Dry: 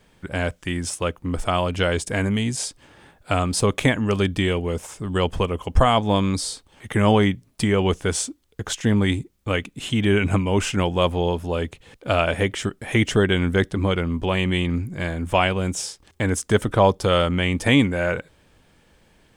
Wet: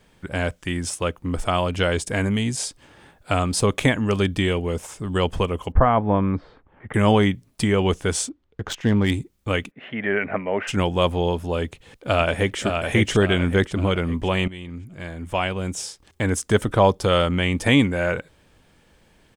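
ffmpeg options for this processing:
ffmpeg -i in.wav -filter_complex "[0:a]asettb=1/sr,asplit=3[link_01][link_02][link_03];[link_01]atrim=end=5.724[link_04];[link_02]atrim=start=5.72:end=6.94,asetpts=PTS-STARTPTS,afade=type=in:duration=0.004:curve=qsin,afade=type=out:start_time=1.216:duration=0.004:curve=qsin,lowpass=frequency=1900:width=0.5412,lowpass=frequency=1900:width=1.3066[link_05];[link_03]atrim=start=6.936[link_06];[link_04][link_05]acrossfade=duration=0.004:curve1=hsin:curve2=qsin[link_07];[link_07][link_06]acrossfade=duration=0.004:curve1=qsin:curve2=hsin,asettb=1/sr,asplit=3[link_08][link_09][link_10];[link_08]atrim=end=8.294[link_11];[link_09]atrim=start=8.29:end=9.12,asetpts=PTS-STARTPTS,afade=type=in:duration=0.004:curve=qsin,afade=type=out:start_time=0.826:duration=0.004:curve=qsin,adynamicsmooth=sensitivity=2.5:basefreq=2500[link_12];[link_10]atrim=start=9.116[link_13];[link_11][link_12]acrossfade=duration=0.004:curve1=hsin:curve2=qsin[link_14];[link_14][link_13]acrossfade=duration=0.004:curve1=qsin:curve2=hsin,asplit=3[link_15][link_16][link_17];[link_15]afade=type=out:start_time=9.7:duration=0.02[link_18];[link_16]highpass=300,equalizer=frequency=320:width_type=q:width=4:gain=-9,equalizer=frequency=630:width_type=q:width=4:gain=7,equalizer=frequency=1000:width_type=q:width=4:gain=-5,equalizer=frequency=1900:width_type=q:width=4:gain=9,lowpass=frequency=2100:width=0.5412,lowpass=frequency=2100:width=1.3066,afade=type=in:start_time=9.7:duration=0.02,afade=type=out:start_time=10.67:duration=0.02[link_19];[link_17]afade=type=in:start_time=10.67:duration=0.02[link_20];[link_18][link_19][link_20]amix=inputs=3:normalize=0,asplit=2[link_21][link_22];[link_22]afade=type=in:start_time=11.64:duration=0.01,afade=type=out:start_time=12.6:duration=0.01,aecho=0:1:560|1120|1680|2240|2800|3360:0.562341|0.253054|0.113874|0.0512434|0.0230595|0.0103768[link_23];[link_21][link_23]amix=inputs=2:normalize=0,asplit=2[link_24][link_25];[link_24]atrim=end=14.48,asetpts=PTS-STARTPTS,afade=type=out:start_time=14.476:duration=0.004:curve=hsin:silence=0.149624[link_26];[link_25]atrim=start=14.48,asetpts=PTS-STARTPTS,afade=type=in:duration=1.82:silence=0.149624[link_27];[link_26][link_27]concat=n=2:v=0:a=1" out.wav

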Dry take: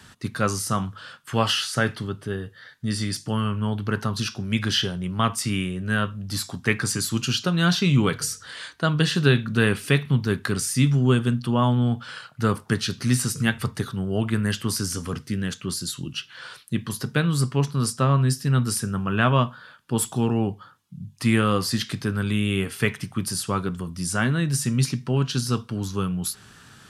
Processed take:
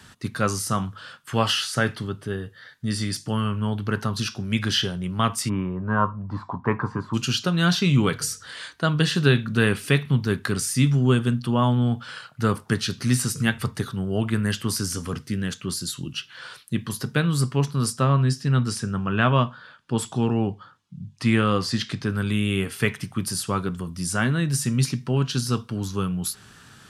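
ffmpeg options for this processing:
ffmpeg -i in.wav -filter_complex "[0:a]asplit=3[link_01][link_02][link_03];[link_01]afade=type=out:start_time=5.48:duration=0.02[link_04];[link_02]lowpass=frequency=1000:width_type=q:width=9.6,afade=type=in:start_time=5.48:duration=0.02,afade=type=out:start_time=7.13:duration=0.02[link_05];[link_03]afade=type=in:start_time=7.13:duration=0.02[link_06];[link_04][link_05][link_06]amix=inputs=3:normalize=0,asettb=1/sr,asplit=3[link_07][link_08][link_09];[link_07]atrim=end=18.094[link_10];[link_08]atrim=start=18.09:end=22.1,asetpts=PTS-STARTPTS,afade=type=in:duration=0.004:curve=qsin,afade=type=out:start_time=4.006:duration=0.004:curve=qsin,lowpass=6800[link_11];[link_09]atrim=start=22.096[link_12];[link_10][link_11]acrossfade=duration=0.004:curve1=hsin:curve2=qsin[link_13];[link_13][link_12]acrossfade=duration=0.004:curve1=qsin:curve2=hsin" out.wav

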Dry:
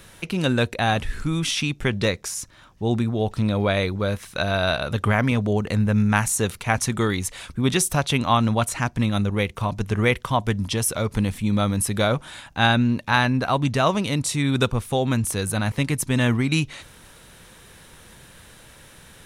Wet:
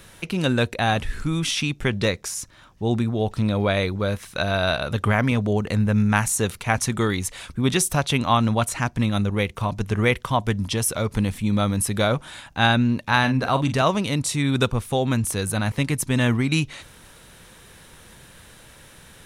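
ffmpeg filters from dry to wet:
ffmpeg -i in.wav -filter_complex "[0:a]asettb=1/sr,asplit=3[link_01][link_02][link_03];[link_01]atrim=end=13.194[link_04];[link_02]atrim=start=13.19:end=13.82,asetpts=PTS-STARTPTS,afade=type=in:duration=0.004:curve=qsin,afade=type=out:start_time=0.626:duration=0.004:curve=qsin,asplit=2[link_05][link_06];[link_06]adelay=45,volume=-10dB[link_07];[link_05][link_07]amix=inputs=2:normalize=0,atrim=end_sample=27783[link_08];[link_03]atrim=start=13.816[link_09];[link_04][link_08]acrossfade=duration=0.004:curve1=hsin:curve2=qsin[link_10];[link_10][link_09]acrossfade=duration=0.004:curve1=qsin:curve2=hsin" out.wav

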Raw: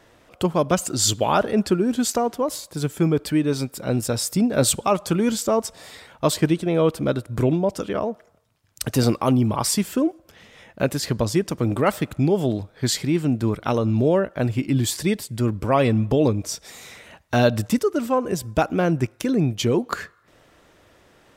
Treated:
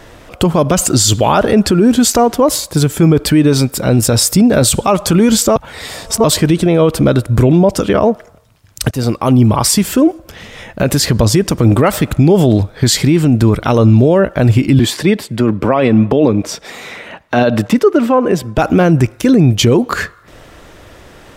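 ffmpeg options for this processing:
ffmpeg -i in.wav -filter_complex "[0:a]asettb=1/sr,asplit=3[link_01][link_02][link_03];[link_01]atrim=end=14.794[link_04];[link_02]atrim=start=14.79:end=18.58,asetpts=PTS-STARTPTS,afade=type=in:duration=0.004:curve=qsin,afade=type=out:start_time=3.786:duration=0.004:curve=qsin,acrossover=split=160 3600:gain=0.141 1 0.224[link_05][link_06][link_07];[link_05][link_06][link_07]amix=inputs=3:normalize=0[link_08];[link_03]atrim=start=18.576[link_09];[link_04][link_08]acrossfade=duration=0.004:curve1=hsin:curve2=qsin[link_10];[link_10][link_09]acrossfade=duration=0.004:curve1=qsin:curve2=hsin,asplit=4[link_11][link_12][link_13][link_14];[link_11]atrim=end=5.562[link_15];[link_12]atrim=start=5.558:end=6.242,asetpts=PTS-STARTPTS,areverse[link_16];[link_13]atrim=start=6.238:end=8.91,asetpts=PTS-STARTPTS,afade=type=out:start_time=2.668:duration=0.004:curve=hsin:silence=0.11885[link_17];[link_14]atrim=start=8.91,asetpts=PTS-STARTPTS,afade=type=in:duration=1.13:silence=0.11885[link_18];[link_15][link_16]acrossfade=duration=0.004:curve1=hsin:curve2=hsin[link_19];[link_17][link_18]concat=n=2:v=0:a=1[link_20];[link_19][link_20]acrossfade=duration=0.004:curve1=hsin:curve2=hsin,lowshelf=frequency=67:gain=11,alimiter=level_in=16dB:limit=-1dB:release=50:level=0:latency=1,volume=-1dB" out.wav

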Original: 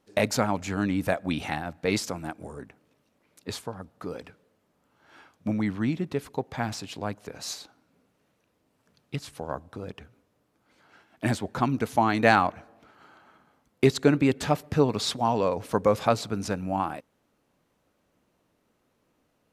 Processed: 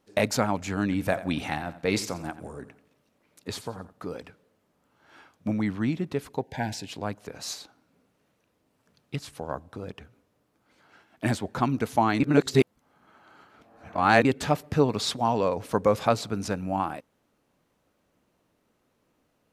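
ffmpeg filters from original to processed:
ffmpeg -i in.wav -filter_complex "[0:a]asettb=1/sr,asplit=3[link_01][link_02][link_03];[link_01]atrim=end=0.834[link_04];[link_02]atrim=start=0.83:end=3.93,asetpts=PTS-STARTPTS,afade=type=in:duration=0.004:curve=qsin,afade=type=out:start_time=3.096:duration=0.004:curve=qsin,aecho=1:1:87|174|261:0.178|0.0587|0.0194,atrim=end_sample=136710[link_05];[link_03]atrim=start=3.926[link_06];[link_04][link_05]acrossfade=duration=0.004:curve1=hsin:curve2=qsin[link_07];[link_07][link_06]acrossfade=duration=0.004:curve1=qsin:curve2=hsin,asettb=1/sr,asplit=3[link_08][link_09][link_10];[link_08]atrim=end=6.414[link_11];[link_09]atrim=start=6.41:end=6.88,asetpts=PTS-STARTPTS,afade=type=in:duration=0.004:curve=qsin,afade=type=out:start_time=0.466:duration=0.004:curve=qsin,asuperstop=centerf=1200:order=12:qfactor=2.6[link_12];[link_10]atrim=start=6.876[link_13];[link_11][link_12]acrossfade=duration=0.004:curve1=hsin:curve2=qsin[link_14];[link_14][link_13]acrossfade=duration=0.004:curve1=qsin:curve2=hsin,asplit=3[link_15][link_16][link_17];[link_15]atrim=end=12.202[link_18];[link_16]atrim=start=12.198:end=14.252,asetpts=PTS-STARTPTS,areverse[link_19];[link_17]atrim=start=14.248[link_20];[link_18][link_19]acrossfade=duration=0.004:curve1=hsin:curve2=hsin[link_21];[link_21][link_20]acrossfade=duration=0.004:curve1=hsin:curve2=hsin" out.wav

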